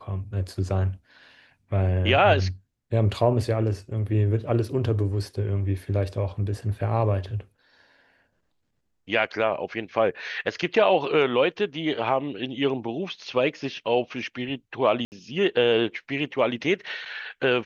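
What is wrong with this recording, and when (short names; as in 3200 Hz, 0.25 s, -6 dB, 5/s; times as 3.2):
15.05–15.12 gap 69 ms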